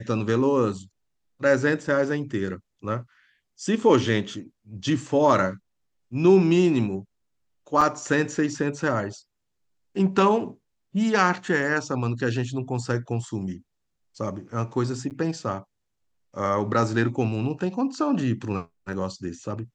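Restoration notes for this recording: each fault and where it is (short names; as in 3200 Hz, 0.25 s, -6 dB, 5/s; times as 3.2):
7.81–7.82 gap 5 ms
15.1–15.11 gap 8.6 ms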